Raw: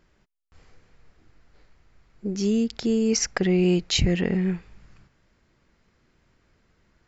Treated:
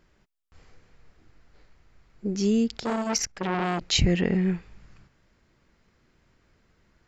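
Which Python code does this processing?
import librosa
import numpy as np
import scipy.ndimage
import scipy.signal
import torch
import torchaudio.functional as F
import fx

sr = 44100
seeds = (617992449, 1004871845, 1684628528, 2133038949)

y = fx.transformer_sat(x, sr, knee_hz=1700.0, at=(2.77, 3.81))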